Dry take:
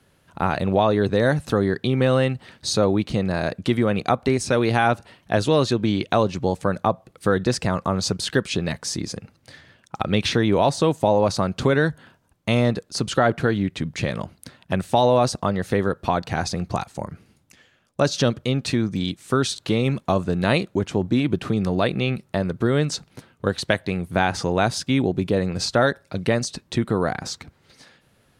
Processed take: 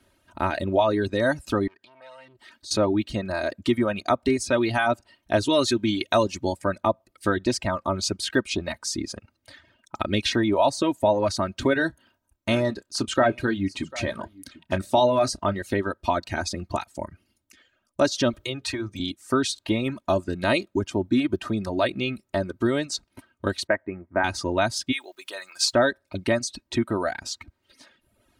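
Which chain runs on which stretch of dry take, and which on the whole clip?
1.67–2.71 s: bass shelf 230 Hz -10.5 dB + compression 2.5:1, threshold -42 dBFS + transformer saturation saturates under 1.5 kHz
5.49–6.53 s: treble shelf 3.2 kHz +8.5 dB + band-stop 4.9 kHz, Q 15 + tape noise reduction on one side only decoder only
11.73–15.62 s: doubling 31 ms -12.5 dB + delay 747 ms -18 dB
18.33–19.00 s: peaking EQ 230 Hz -12 dB 0.8 oct + hum notches 60/120/180/240/300/360/420/480 Hz + three bands compressed up and down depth 40%
23.67–24.24 s: Chebyshev low-pass 2 kHz, order 4 + bass shelf 140 Hz -10.5 dB + tape noise reduction on one side only decoder only
24.91–25.72 s: high-pass 1.1 kHz + treble shelf 5.2 kHz +9 dB + crackle 570 per s -48 dBFS
whole clip: reverb removal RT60 0.92 s; comb 3.2 ms, depth 72%; trim -3 dB

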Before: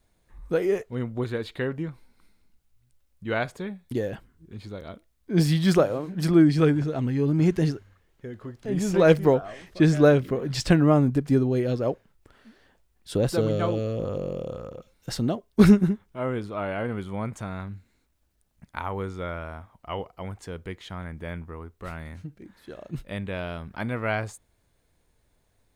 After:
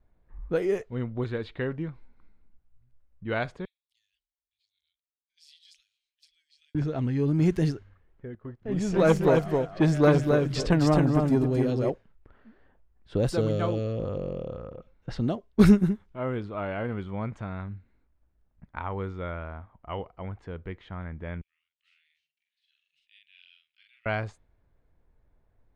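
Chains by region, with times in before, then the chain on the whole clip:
3.65–6.75 s: inverse Chebyshev band-stop 150–1100 Hz, stop band 60 dB + differentiator
8.35–11.90 s: gate -43 dBFS, range -12 dB + feedback delay 266 ms, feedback 16%, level -4 dB + transformer saturation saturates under 610 Hz
21.41–24.06 s: elliptic high-pass 2.8 kHz, stop band 70 dB + doubling 45 ms -2 dB
whole clip: level-controlled noise filter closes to 1.6 kHz, open at -18 dBFS; bass shelf 61 Hz +9 dB; trim -2.5 dB

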